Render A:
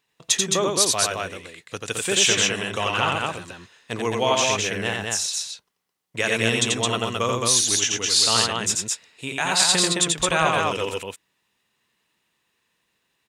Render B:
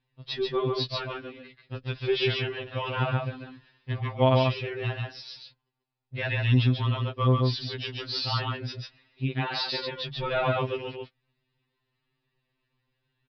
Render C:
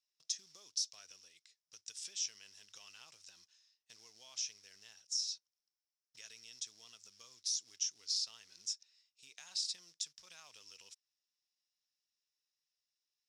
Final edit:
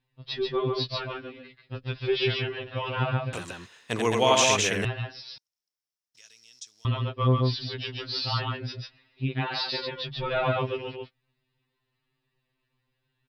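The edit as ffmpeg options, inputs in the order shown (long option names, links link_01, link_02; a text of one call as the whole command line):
ffmpeg -i take0.wav -i take1.wav -i take2.wav -filter_complex "[1:a]asplit=3[link_01][link_02][link_03];[link_01]atrim=end=3.332[link_04];[0:a]atrim=start=3.328:end=4.852[link_05];[link_02]atrim=start=4.848:end=5.382[link_06];[2:a]atrim=start=5.378:end=6.852[link_07];[link_03]atrim=start=6.848[link_08];[link_04][link_05]acrossfade=duration=0.004:curve1=hsin:curve2=hsin[link_09];[link_09][link_06]acrossfade=duration=0.004:curve1=hsin:curve2=hsin[link_10];[link_10][link_07]acrossfade=duration=0.004:curve1=hsin:curve2=hsin[link_11];[link_11][link_08]acrossfade=duration=0.004:curve1=hsin:curve2=hsin" out.wav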